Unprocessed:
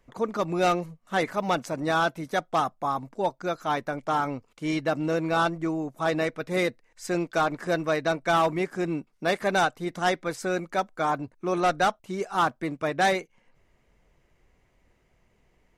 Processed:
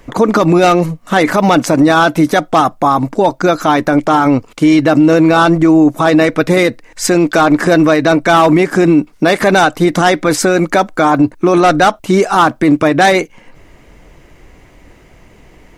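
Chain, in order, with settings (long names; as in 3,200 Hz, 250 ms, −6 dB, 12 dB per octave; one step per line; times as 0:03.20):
parametric band 300 Hz +8 dB 0.21 octaves
boost into a limiter +24 dB
level −1 dB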